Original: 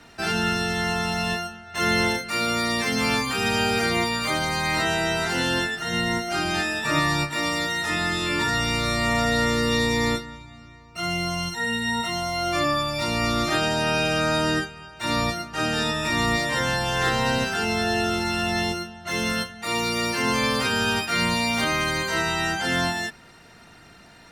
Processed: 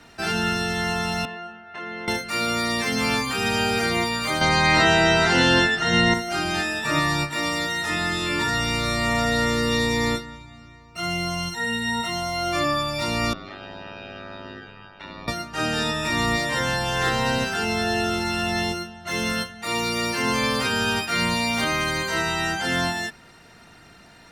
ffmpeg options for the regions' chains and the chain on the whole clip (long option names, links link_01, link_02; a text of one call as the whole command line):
ffmpeg -i in.wav -filter_complex "[0:a]asettb=1/sr,asplit=3[link_01][link_02][link_03];[link_01]atrim=end=1.254[link_04];[link_02]atrim=start=1.25:end=2.08,asetpts=PTS-STARTPTS,afade=type=in:duration=0.004:curve=qsin,afade=type=out:start_time=0.826:duration=0.004:curve=qsin,lowpass=6500,acrossover=split=190 3000:gain=0.178 1 0.126[link_05][link_06][link_07];[link_05][link_06][link_07]amix=inputs=3:normalize=0,acompressor=threshold=-32dB:ratio=4:attack=3.2:release=140:knee=1:detection=peak[link_08];[link_03]atrim=start=2.076[link_09];[link_04][link_08]acrossfade=duration=0.004:curve1=hsin:curve2=qsin[link_10];[link_10][link_09]acrossfade=duration=0.004:curve1=qsin:curve2=hsin,asettb=1/sr,asplit=3[link_11][link_12][link_13];[link_11]atrim=end=4.414[link_14];[link_12]atrim=start=4.41:end=6.14,asetpts=PTS-STARTPTS,afade=type=in:duration=0.004:curve=qsin,afade=type=out:start_time=1.726:duration=0.004:curve=qsin,lowpass=6100,acontrast=70[link_15];[link_13]atrim=start=6.136[link_16];[link_14][link_15]acrossfade=duration=0.004:curve1=hsin:curve2=qsin[link_17];[link_17][link_16]acrossfade=duration=0.004:curve1=qsin:curve2=hsin,asettb=1/sr,asplit=3[link_18][link_19][link_20];[link_18]atrim=end=13.334[link_21];[link_19]atrim=start=13.33:end=15.28,asetpts=PTS-STARTPTS,afade=type=in:duration=0.004:curve=qsin,afade=type=out:start_time=1.946:duration=0.004:curve=qsin,lowpass=frequency=4100:width=0.5412,lowpass=frequency=4100:width=1.3066,acompressor=threshold=-32dB:ratio=8:attack=3.2:release=140:knee=1:detection=peak,aeval=exprs='val(0)*sin(2*PI*49*n/s)':channel_layout=same[link_22];[link_20]atrim=start=15.276[link_23];[link_21][link_22]acrossfade=duration=0.004:curve1=hsin:curve2=qsin[link_24];[link_24][link_23]acrossfade=duration=0.004:curve1=qsin:curve2=hsin" out.wav